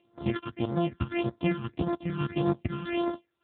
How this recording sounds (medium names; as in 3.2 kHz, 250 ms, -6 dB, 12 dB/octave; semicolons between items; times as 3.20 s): a buzz of ramps at a fixed pitch in blocks of 128 samples; phasing stages 8, 1.7 Hz, lowest notch 590–2600 Hz; AMR-NB